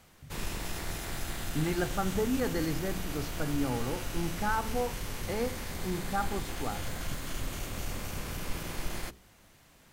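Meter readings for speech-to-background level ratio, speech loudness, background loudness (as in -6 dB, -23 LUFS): 4.0 dB, -34.5 LUFS, -38.5 LUFS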